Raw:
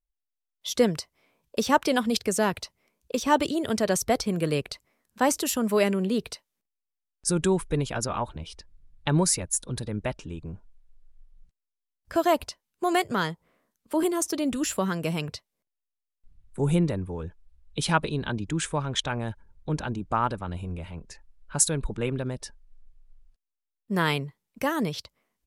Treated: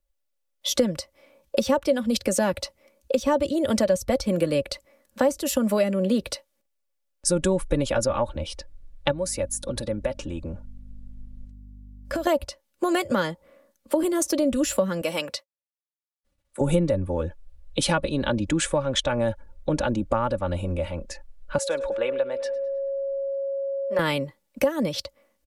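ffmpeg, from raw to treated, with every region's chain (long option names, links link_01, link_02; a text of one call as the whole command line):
ffmpeg -i in.wav -filter_complex "[0:a]asettb=1/sr,asplit=3[link_01][link_02][link_03];[link_01]atrim=end=9.114[link_04];[link_02]atrim=start=9.11:end=12.27,asetpts=PTS-STARTPTS,afade=type=in:duration=0.004:curve=qsin,afade=type=out:start_time=3.156:duration=0.004:curve=qsin,acompressor=threshold=-33dB:ratio=5:attack=3.2:release=140:knee=1:detection=peak,aeval=exprs='val(0)+0.00316*(sin(2*PI*50*n/s)+sin(2*PI*2*50*n/s)/2+sin(2*PI*3*50*n/s)/3+sin(2*PI*4*50*n/s)/4+sin(2*PI*5*50*n/s)/5)':channel_layout=same[link_05];[link_03]atrim=start=12.266[link_06];[link_04][link_05]acrossfade=duration=0.004:curve1=hsin:curve2=qsin[link_07];[link_07][link_06]acrossfade=duration=0.004:curve1=qsin:curve2=hsin,asettb=1/sr,asplit=3[link_08][link_09][link_10];[link_08]atrim=end=15.014[link_11];[link_09]atrim=start=15.01:end=16.61,asetpts=PTS-STARTPTS,afade=type=in:duration=0.004:curve=qsin,afade=type=out:start_time=1.596:duration=0.004:curve=qsin,agate=range=-33dB:threshold=-52dB:ratio=3:release=100:detection=peak,highpass=frequency=670:poles=1[link_12];[link_10]atrim=start=16.606[link_13];[link_11][link_12]acrossfade=duration=0.004:curve1=hsin:curve2=qsin[link_14];[link_14][link_13]acrossfade=duration=0.004:curve1=qsin:curve2=hsin,asettb=1/sr,asplit=3[link_15][link_16][link_17];[link_15]atrim=end=21.584[link_18];[link_16]atrim=start=21.58:end=23.99,asetpts=PTS-STARTPTS,afade=type=in:duration=0.004:curve=qsin,afade=type=out:start_time=2.406:duration=0.004:curve=qsin,asplit=2[link_19][link_20];[link_20]adelay=105,lowpass=frequency=4500:poles=1,volume=-19dB,asplit=2[link_21][link_22];[link_22]adelay=105,lowpass=frequency=4500:poles=1,volume=0.55,asplit=2[link_23][link_24];[link_24]adelay=105,lowpass=frequency=4500:poles=1,volume=0.55,asplit=2[link_25][link_26];[link_26]adelay=105,lowpass=frequency=4500:poles=1,volume=0.55,asplit=2[link_27][link_28];[link_28]adelay=105,lowpass=frequency=4500:poles=1,volume=0.55[link_29];[link_19][link_21][link_23][link_25][link_27][link_29]amix=inputs=6:normalize=0,atrim=end_sample=106281,aeval=exprs='val(0)+0.00501*sin(2*PI*550*n/s)':channel_layout=same,acrossover=split=460 4100:gain=0.0794 1 0.141[link_30][link_31][link_32];[link_30][link_31][link_32]amix=inputs=3:normalize=0[link_33];[link_17]atrim=start=23.986[link_34];[link_18][link_33]acrossfade=duration=0.004:curve1=hsin:curve2=qsin[link_35];[link_35][link_34]acrossfade=duration=0.004:curve1=qsin:curve2=hsin,equalizer=frequency=550:width_type=o:width=0.25:gain=14.5,aecho=1:1:3.5:0.53,acrossover=split=170[link_36][link_37];[link_37]acompressor=threshold=-27dB:ratio=5[link_38];[link_36][link_38]amix=inputs=2:normalize=0,volume=6dB" out.wav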